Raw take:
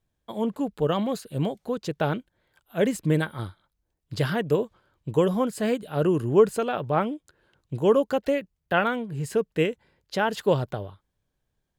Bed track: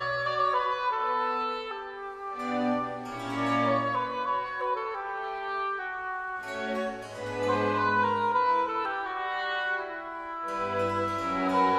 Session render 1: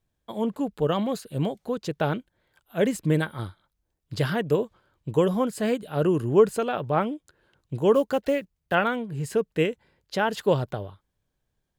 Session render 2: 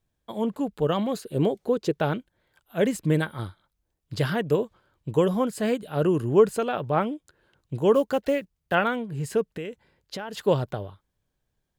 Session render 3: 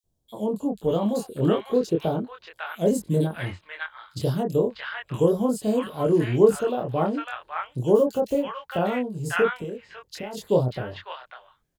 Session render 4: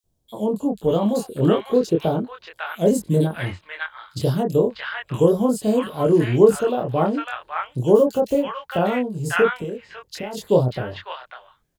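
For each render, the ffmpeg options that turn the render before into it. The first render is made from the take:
-filter_complex "[0:a]asettb=1/sr,asplit=3[s0][s1][s2];[s0]atrim=end=7.944[s3];[s1]atrim=start=7.94:end=8.75,asetpts=PTS-STARTPTS,afade=t=in:d=0.004:c=qsin,afade=t=out:st=0.806:d=0.004:c=qsin,acrusher=bits=8:mode=log:mix=0:aa=0.000001[s4];[s2]atrim=start=8.746[s5];[s3][s4]acrossfade=d=0.004:c1=hsin:c2=qsin[s6];[s6][s5]acrossfade=d=0.004:c1=qsin:c2=hsin"
-filter_complex "[0:a]asettb=1/sr,asplit=3[s0][s1][s2];[s0]atrim=end=1.164[s3];[s1]atrim=start=1.16:end=1.97,asetpts=PTS-STARTPTS,afade=t=in:d=0.004:c=qsin,afade=t=out:st=0.806:d=0.004:c=qsin,equalizer=f=390:t=o:w=0.77:g=10[s4];[s2]atrim=start=1.966[s5];[s3][s4]acrossfade=d=0.004:c1=hsin:c2=qsin[s6];[s6][s5]acrossfade=d=0.004:c1=qsin:c2=hsin,asettb=1/sr,asplit=3[s7][s8][s9];[s7]atrim=end=9.554[s10];[s8]atrim=start=9.55:end=10.44,asetpts=PTS-STARTPTS,afade=t=in:d=0.004:c=qsin,afade=t=out:st=0.886:d=0.004:c=qsin,acompressor=threshold=0.0316:ratio=8:attack=3.2:release=140:knee=1:detection=peak[s11];[s9]atrim=start=10.436[s12];[s10][s11]acrossfade=d=0.004:c1=hsin:c2=qsin[s13];[s13][s12]acrossfade=d=0.004:c1=qsin:c2=hsin"
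-filter_complex "[0:a]asplit=2[s0][s1];[s1]adelay=24,volume=0.75[s2];[s0][s2]amix=inputs=2:normalize=0,acrossover=split=1000|3500[s3][s4][s5];[s3]adelay=40[s6];[s4]adelay=590[s7];[s6][s7][s5]amix=inputs=3:normalize=0"
-af "volume=1.58,alimiter=limit=0.794:level=0:latency=1"

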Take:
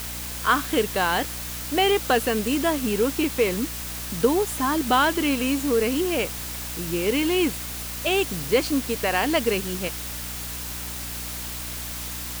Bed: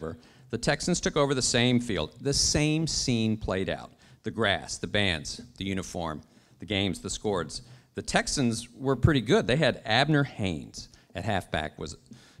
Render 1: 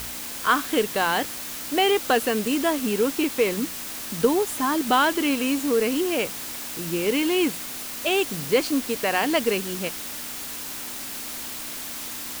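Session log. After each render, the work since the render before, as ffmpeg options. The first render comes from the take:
-af "bandreject=f=60:t=h:w=4,bandreject=f=120:t=h:w=4,bandreject=f=180:t=h:w=4"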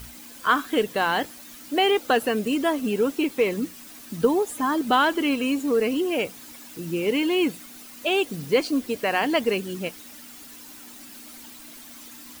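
-af "afftdn=nr=12:nf=-34"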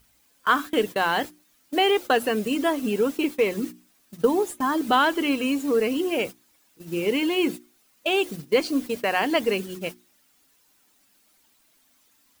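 -af "agate=range=0.112:threshold=0.0282:ratio=16:detection=peak,bandreject=f=60:t=h:w=6,bandreject=f=120:t=h:w=6,bandreject=f=180:t=h:w=6,bandreject=f=240:t=h:w=6,bandreject=f=300:t=h:w=6,bandreject=f=360:t=h:w=6"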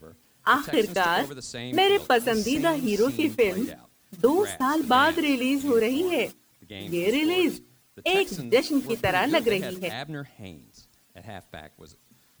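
-filter_complex "[1:a]volume=0.251[s0];[0:a][s0]amix=inputs=2:normalize=0"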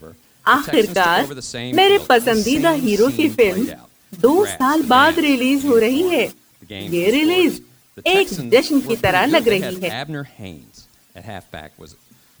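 -af "volume=2.51,alimiter=limit=0.891:level=0:latency=1"

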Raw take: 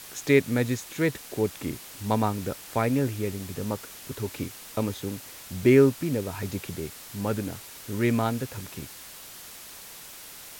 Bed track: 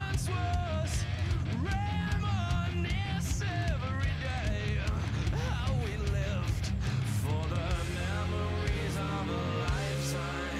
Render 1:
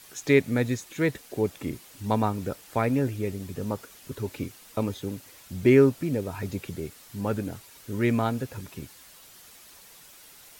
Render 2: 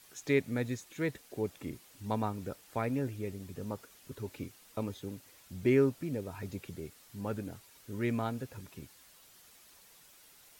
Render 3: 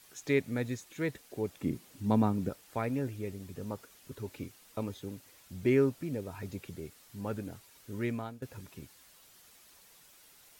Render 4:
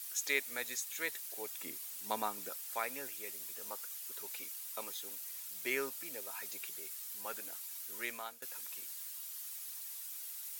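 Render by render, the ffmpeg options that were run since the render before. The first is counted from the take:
-af "afftdn=nr=8:nf=-44"
-af "volume=0.376"
-filter_complex "[0:a]asettb=1/sr,asplit=3[s0][s1][s2];[s0]atrim=end=1.634[s3];[s1]atrim=start=1.63:end=2.49,asetpts=PTS-STARTPTS,afade=t=in:d=0.004:c=qsin,afade=t=out:st=0.856:d=0.004:c=qsin,equalizer=f=200:t=o:w=2.1:g=10[s4];[s2]atrim=start=2.486[s5];[s3][s4]acrossfade=d=0.004:c1=hsin:c2=qsin[s6];[s6][s5]acrossfade=d=0.004:c1=qsin:c2=hsin,asplit=2[s7][s8];[s7]atrim=end=8.42,asetpts=PTS-STARTPTS,afade=t=out:st=8:d=0.42:silence=0.158489[s9];[s8]atrim=start=8.42,asetpts=PTS-STARTPTS,afade=t=in:d=0.004:c=hsin:silence=0.158489[s10];[s9][s10]concat=n=2:v=0:a=1"
-af "highpass=840,aemphasis=mode=production:type=75kf"

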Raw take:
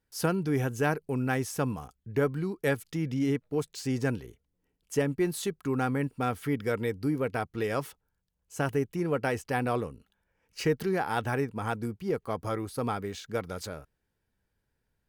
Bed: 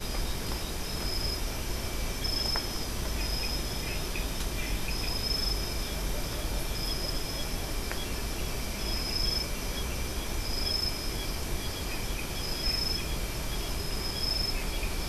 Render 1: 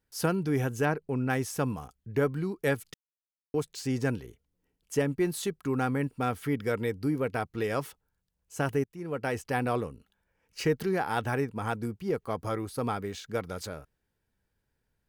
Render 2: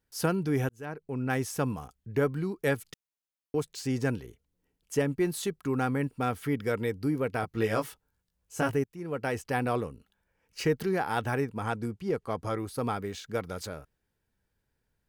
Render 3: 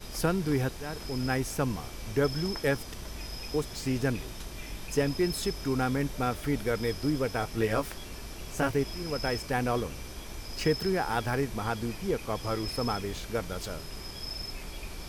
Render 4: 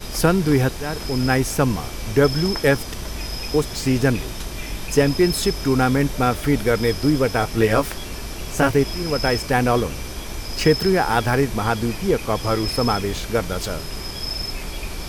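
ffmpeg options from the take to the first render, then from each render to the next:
-filter_complex "[0:a]asettb=1/sr,asplit=3[s0][s1][s2];[s0]atrim=end=0.854[s3];[s1]atrim=start=0.85:end=1.3,asetpts=PTS-STARTPTS,afade=t=in:d=0.004:c=qsin,afade=t=out:st=0.446:d=0.004:c=qsin,aemphasis=mode=reproduction:type=50kf[s4];[s2]atrim=start=1.296[s5];[s3][s4]acrossfade=d=0.004:c1=hsin:c2=qsin[s6];[s6][s5]acrossfade=d=0.004:c1=qsin:c2=hsin,asplit=4[s7][s8][s9][s10];[s7]atrim=end=2.94,asetpts=PTS-STARTPTS,afade=t=out:st=2.936:d=0.004:c=hsin[s11];[s8]atrim=start=2.94:end=3.54,asetpts=PTS-STARTPTS,volume=0[s12];[s9]atrim=start=3.54:end=8.84,asetpts=PTS-STARTPTS,afade=t=in:d=0.004:c=hsin,afade=t=out:st=5.296:d=0.004:c=hsin:silence=0.0891251[s13];[s10]atrim=start=8.84,asetpts=PTS-STARTPTS,afade=t=in:d=0.57:silence=0.0891251[s14];[s11][s12][s13][s14]concat=n=4:v=0:a=1"
-filter_complex "[0:a]asettb=1/sr,asplit=3[s0][s1][s2];[s0]atrim=end=7.414[s3];[s1]atrim=start=7.41:end=8.75,asetpts=PTS-STARTPTS,afade=t=in:d=0.004:c=qsin,afade=t=out:st=1.336:d=0.004:c=qsin,asplit=2[s4][s5];[s5]adelay=18,volume=0.708[s6];[s4][s6]amix=inputs=2:normalize=0,atrim=end_sample=59094[s7];[s2]atrim=start=8.746[s8];[s3][s7]acrossfade=d=0.004:c1=hsin:c2=qsin[s9];[s9][s8]acrossfade=d=0.004:c1=qsin:c2=hsin,asettb=1/sr,asplit=3[s10][s11][s12];[s10]atrim=end=11.634[s13];[s11]atrim=start=11.63:end=12.58,asetpts=PTS-STARTPTS,afade=t=in:d=0.004:c=qsin,afade=t=out:st=0.946:d=0.004:c=qsin,lowpass=11000[s14];[s12]atrim=start=12.576[s15];[s13][s14]acrossfade=d=0.004:c1=hsin:c2=qsin[s16];[s16][s15]acrossfade=d=0.004:c1=qsin:c2=hsin,asplit=2[s17][s18];[s17]atrim=end=0.69,asetpts=PTS-STARTPTS,afade=t=out:st=0.686:d=0.004:c=hsin[s19];[s18]atrim=start=0.69,asetpts=PTS-STARTPTS,afade=t=in:d=0.68[s20];[s19][s20]concat=n=2:v=0:a=1"
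-filter_complex "[1:a]volume=0.398[s0];[0:a][s0]amix=inputs=2:normalize=0"
-af "volume=3.35"

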